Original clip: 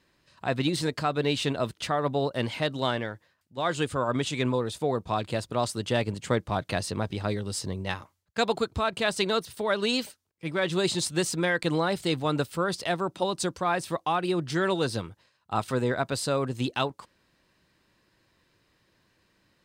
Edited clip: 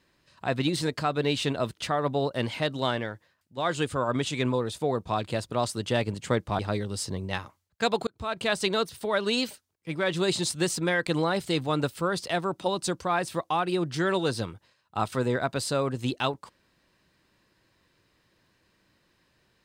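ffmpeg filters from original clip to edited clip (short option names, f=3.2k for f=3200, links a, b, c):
-filter_complex "[0:a]asplit=3[a][b][c];[a]atrim=end=6.592[d];[b]atrim=start=7.148:end=8.63,asetpts=PTS-STARTPTS,afade=t=out:st=1.478:d=0.004:c=hsin[e];[c]atrim=start=8.63,asetpts=PTS-STARTPTS,afade=t=in:d=0.36[f];[e][f]concat=n=2:v=0:a=1[g];[d][g]acrossfade=d=0.004:c1=hsin:c2=hsin"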